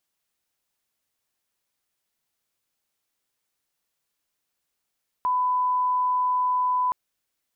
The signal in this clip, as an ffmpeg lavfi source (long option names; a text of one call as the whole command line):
ffmpeg -f lavfi -i "sine=frequency=1000:duration=1.67:sample_rate=44100,volume=-1.94dB" out.wav